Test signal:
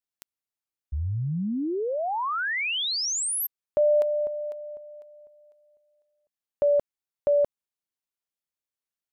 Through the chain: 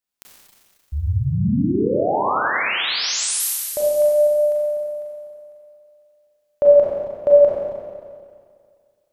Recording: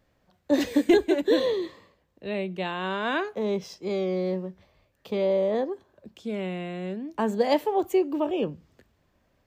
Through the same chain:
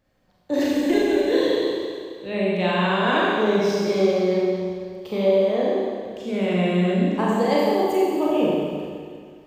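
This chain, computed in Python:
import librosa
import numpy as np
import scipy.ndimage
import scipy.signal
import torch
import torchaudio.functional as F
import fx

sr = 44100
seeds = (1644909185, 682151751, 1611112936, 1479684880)

y = fx.rider(x, sr, range_db=5, speed_s=0.5)
y = fx.rev_schroeder(y, sr, rt60_s=2.1, comb_ms=30, drr_db=-5.5)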